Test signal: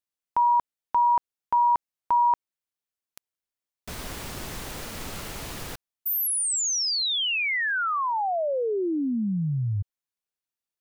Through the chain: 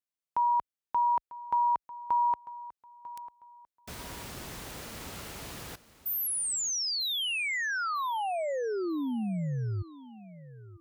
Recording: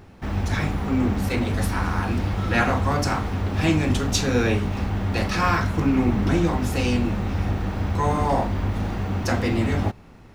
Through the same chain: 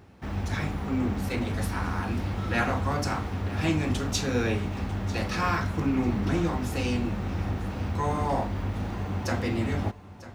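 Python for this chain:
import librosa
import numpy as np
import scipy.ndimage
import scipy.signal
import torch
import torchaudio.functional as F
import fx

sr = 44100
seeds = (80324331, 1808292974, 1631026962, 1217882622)

y = scipy.signal.sosfilt(scipy.signal.butter(2, 43.0, 'highpass', fs=sr, output='sos'), x)
y = fx.echo_feedback(y, sr, ms=946, feedback_pct=28, wet_db=-17.0)
y = y * librosa.db_to_amplitude(-5.5)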